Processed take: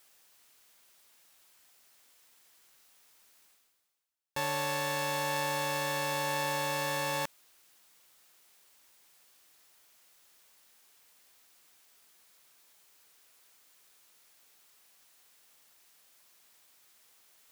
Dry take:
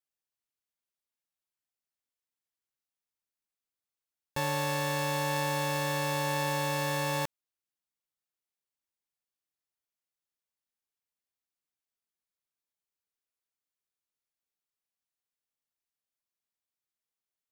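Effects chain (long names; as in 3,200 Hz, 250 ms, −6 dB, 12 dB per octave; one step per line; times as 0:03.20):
low-shelf EQ 280 Hz −10 dB
reversed playback
upward compression, threshold −40 dBFS
reversed playback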